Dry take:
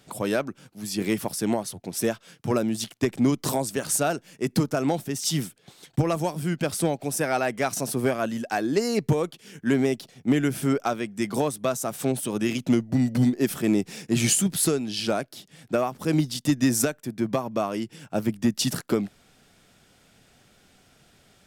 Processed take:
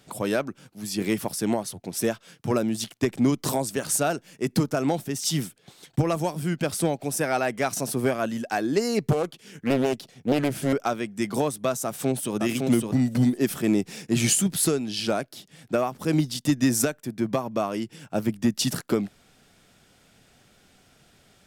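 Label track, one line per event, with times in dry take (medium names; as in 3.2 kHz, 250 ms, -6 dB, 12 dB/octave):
9.110000	10.730000	loudspeaker Doppler distortion depth 0.84 ms
11.840000	12.350000	echo throw 560 ms, feedback 10%, level -3.5 dB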